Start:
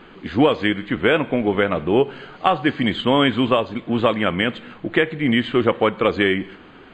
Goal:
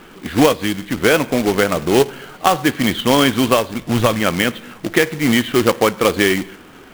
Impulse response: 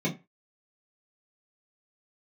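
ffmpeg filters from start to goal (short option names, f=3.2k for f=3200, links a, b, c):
-filter_complex "[0:a]asettb=1/sr,asplit=3[a][b][c];[a]atrim=end=0.524[d];[b]atrim=start=0.52:end=0.98,asetpts=PTS-STARTPTS,afade=t=in:d=0.004:c=qsin,afade=t=out:st=0.456:d=0.004:c=qsin,acrossover=split=320|3000[e][f][g];[f]acompressor=threshold=-34dB:ratio=2.5[h];[e][h][g]amix=inputs=3:normalize=0[i];[c]atrim=start=0.976[j];[d][i]acrossfade=d=0.004:c1=hsin:c2=qsin[k];[k][j]acrossfade=d=0.004:c1=qsin:c2=hsin,asplit=3[l][m][n];[l]afade=t=out:st=3.77:d=0.02[o];[m]asubboost=boost=3.5:cutoff=150,afade=t=in:st=3.77:d=0.02,afade=t=out:st=4.19:d=0.02[p];[n]afade=t=in:st=4.19:d=0.02[q];[o][p][q]amix=inputs=3:normalize=0,acrusher=bits=2:mode=log:mix=0:aa=0.000001,volume=2.5dB"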